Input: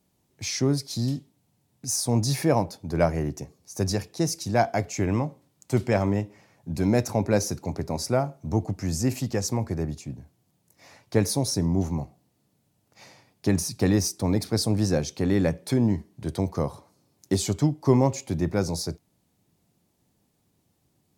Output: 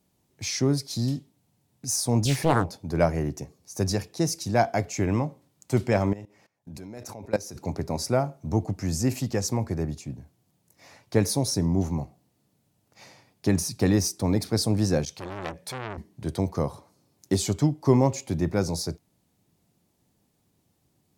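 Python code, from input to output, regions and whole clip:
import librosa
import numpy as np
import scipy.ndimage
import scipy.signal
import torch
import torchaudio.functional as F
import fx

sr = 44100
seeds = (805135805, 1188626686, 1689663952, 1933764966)

y = fx.chain(x, sr, fx.low_shelf(hz=90.0, db=10.0),
    fx.doppler_dist(depth_ms=0.9), at=(2.25, 2.77))
y = fx.chain(y, sr, fx.bass_treble(bass_db=-4, treble_db=1),
    fx.level_steps(step_db=20), at=(6.13, 7.56))
y = fx.chain(y, sr, fx.peak_eq(hz=320.0, db=-13.5, octaves=0.9),
    fx.transformer_sat(knee_hz=2100.0), at=(15.05, 15.98))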